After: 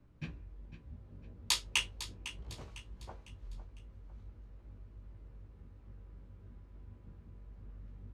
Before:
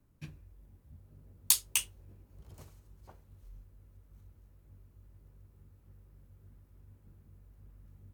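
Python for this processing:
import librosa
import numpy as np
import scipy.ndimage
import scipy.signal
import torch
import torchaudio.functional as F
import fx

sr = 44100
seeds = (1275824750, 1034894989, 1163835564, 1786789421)

p1 = scipy.signal.sosfilt(scipy.signal.butter(2, 3800.0, 'lowpass', fs=sr, output='sos'), x)
p2 = fx.doubler(p1, sr, ms=17.0, db=-6.0)
p3 = p2 + fx.echo_feedback(p2, sr, ms=503, feedback_pct=40, wet_db=-13.0, dry=0)
y = p3 * librosa.db_to_amplitude(5.0)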